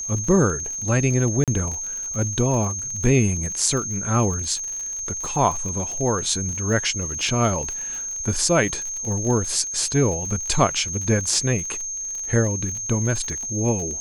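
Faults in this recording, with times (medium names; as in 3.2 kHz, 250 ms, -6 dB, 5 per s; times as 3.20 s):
crackle 49 per s -29 dBFS
whine 6.4 kHz -27 dBFS
1.44–1.48 s: dropout 37 ms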